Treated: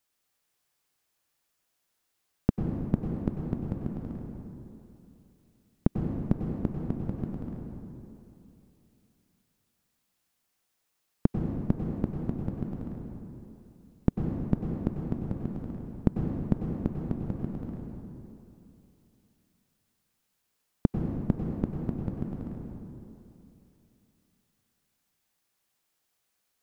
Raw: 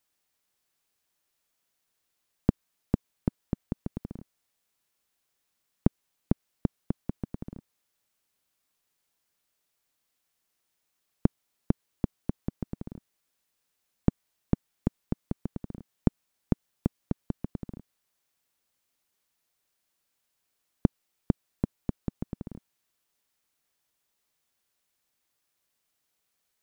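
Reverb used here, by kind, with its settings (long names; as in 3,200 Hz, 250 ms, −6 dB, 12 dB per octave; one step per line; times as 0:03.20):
dense smooth reverb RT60 2.9 s, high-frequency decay 0.55×, pre-delay 85 ms, DRR 0.5 dB
level −1 dB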